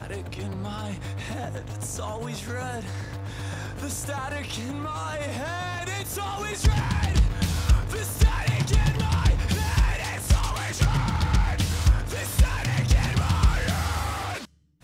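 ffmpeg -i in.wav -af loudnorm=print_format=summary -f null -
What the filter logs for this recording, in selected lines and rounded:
Input Integrated:    -26.3 LUFS
Input True Peak:     -10.2 dBTP
Input LRA:             8.6 LU
Input Threshold:     -36.4 LUFS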